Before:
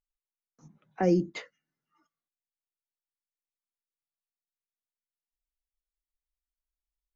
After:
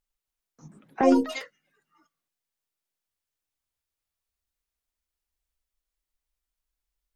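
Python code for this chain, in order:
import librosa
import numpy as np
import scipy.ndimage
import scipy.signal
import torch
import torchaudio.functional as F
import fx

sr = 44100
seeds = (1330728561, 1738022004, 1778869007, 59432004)

y = fx.robotise(x, sr, hz=265.0, at=(1.01, 1.41))
y = fx.echo_pitch(y, sr, ms=278, semitones=5, count=3, db_per_echo=-6.0)
y = F.gain(torch.from_numpy(y), 6.5).numpy()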